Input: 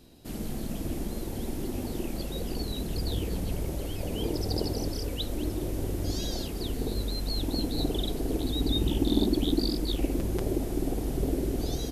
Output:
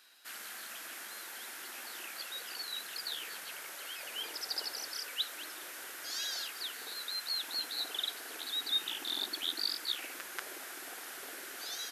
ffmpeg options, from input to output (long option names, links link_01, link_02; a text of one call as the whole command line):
ffmpeg -i in.wav -af "highpass=frequency=1500:width_type=q:width=3.1" out.wav